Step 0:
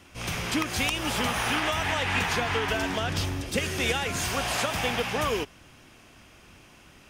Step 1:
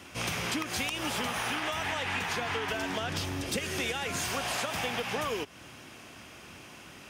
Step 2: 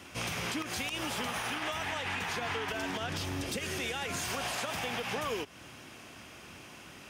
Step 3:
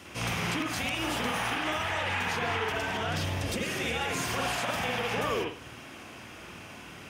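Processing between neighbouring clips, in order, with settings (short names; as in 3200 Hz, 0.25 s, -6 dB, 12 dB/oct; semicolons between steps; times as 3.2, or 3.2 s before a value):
HPF 72 Hz; low shelf 130 Hz -5 dB; compressor 6:1, threshold -35 dBFS, peak gain reduction 12.5 dB; gain +5 dB
limiter -24.5 dBFS, peak gain reduction 6.5 dB; gain -1 dB
reverb, pre-delay 52 ms, DRR -1.5 dB; gain +1 dB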